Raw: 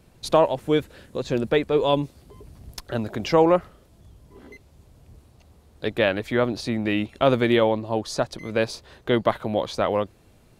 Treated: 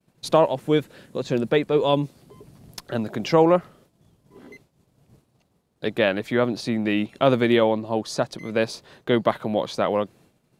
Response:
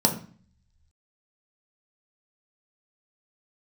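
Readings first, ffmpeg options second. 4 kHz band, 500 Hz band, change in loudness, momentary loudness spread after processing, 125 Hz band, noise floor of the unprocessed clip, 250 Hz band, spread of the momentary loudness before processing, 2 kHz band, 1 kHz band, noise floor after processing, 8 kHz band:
0.0 dB, +0.5 dB, +0.5 dB, 12 LU, +0.5 dB, −56 dBFS, +1.5 dB, 12 LU, 0.0 dB, 0.0 dB, −68 dBFS, 0.0 dB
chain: -af "lowshelf=frequency=100:width_type=q:width=1.5:gain=-11.5,agate=range=-33dB:threshold=-48dB:ratio=3:detection=peak"

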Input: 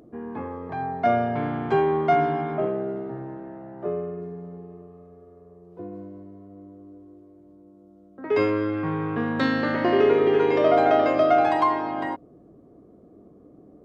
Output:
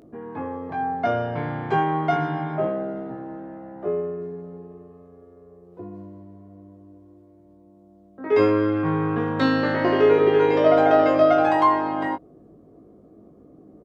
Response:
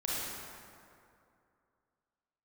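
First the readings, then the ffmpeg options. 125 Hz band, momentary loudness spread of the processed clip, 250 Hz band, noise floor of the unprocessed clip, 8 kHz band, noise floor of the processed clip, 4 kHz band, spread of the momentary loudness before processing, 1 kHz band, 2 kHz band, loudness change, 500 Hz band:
+3.0 dB, 20 LU, +2.0 dB, −52 dBFS, can't be measured, −52 dBFS, +1.5 dB, 20 LU, +1.0 dB, +1.5 dB, +2.0 dB, +2.0 dB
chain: -filter_complex "[0:a]asplit=2[link_01][link_02];[link_02]adelay=19,volume=-4dB[link_03];[link_01][link_03]amix=inputs=2:normalize=0"

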